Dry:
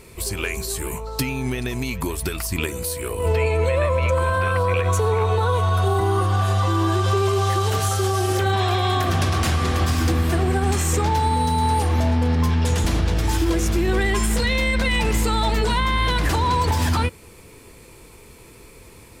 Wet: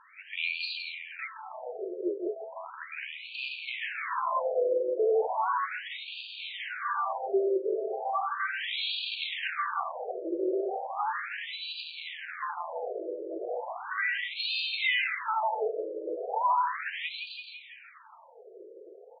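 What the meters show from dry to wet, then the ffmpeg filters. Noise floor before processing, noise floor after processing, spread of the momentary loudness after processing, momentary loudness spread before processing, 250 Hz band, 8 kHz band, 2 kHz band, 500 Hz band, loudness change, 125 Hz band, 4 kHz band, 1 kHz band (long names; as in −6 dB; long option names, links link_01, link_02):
−46 dBFS, −51 dBFS, 12 LU, 6 LU, −16.5 dB, below −40 dB, −6.0 dB, −7.5 dB, −10.5 dB, below −40 dB, −6.5 dB, −8.5 dB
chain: -af "aecho=1:1:168|336|504|672|840|1008|1176|1344:0.501|0.296|0.174|0.103|0.0607|0.0358|0.0211|0.0125,aeval=exprs='0.335*(cos(1*acos(clip(val(0)/0.335,-1,1)))-cos(1*PI/2))+0.075*(cos(5*acos(clip(val(0)/0.335,-1,1)))-cos(5*PI/2))':channel_layout=same,afftfilt=real='re*between(b*sr/1024,440*pow(3400/440,0.5+0.5*sin(2*PI*0.36*pts/sr))/1.41,440*pow(3400/440,0.5+0.5*sin(2*PI*0.36*pts/sr))*1.41)':imag='im*between(b*sr/1024,440*pow(3400/440,0.5+0.5*sin(2*PI*0.36*pts/sr))/1.41,440*pow(3400/440,0.5+0.5*sin(2*PI*0.36*pts/sr))*1.41)':win_size=1024:overlap=0.75,volume=-5.5dB"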